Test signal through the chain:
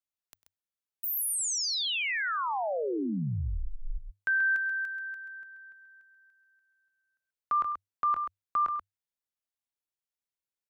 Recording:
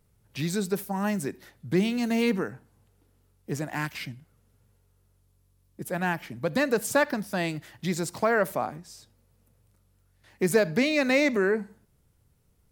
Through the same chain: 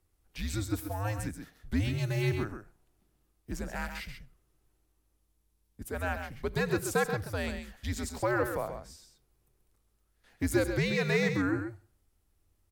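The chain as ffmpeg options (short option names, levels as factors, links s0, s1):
-af "aecho=1:1:99|133:0.133|0.398,afreqshift=-100,volume=0.531"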